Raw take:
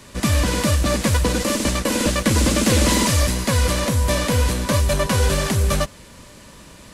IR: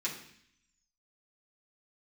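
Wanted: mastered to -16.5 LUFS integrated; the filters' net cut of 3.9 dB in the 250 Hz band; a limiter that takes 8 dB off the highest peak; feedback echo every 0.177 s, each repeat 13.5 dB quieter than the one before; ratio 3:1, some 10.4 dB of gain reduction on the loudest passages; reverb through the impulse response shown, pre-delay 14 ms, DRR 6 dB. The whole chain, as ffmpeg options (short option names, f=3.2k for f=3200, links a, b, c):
-filter_complex "[0:a]equalizer=f=250:t=o:g=-5,acompressor=threshold=-29dB:ratio=3,alimiter=level_in=0.5dB:limit=-24dB:level=0:latency=1,volume=-0.5dB,aecho=1:1:177|354:0.211|0.0444,asplit=2[a][b];[1:a]atrim=start_sample=2205,adelay=14[c];[b][c]afir=irnorm=-1:irlink=0,volume=-10dB[d];[a][d]amix=inputs=2:normalize=0,volume=16.5dB"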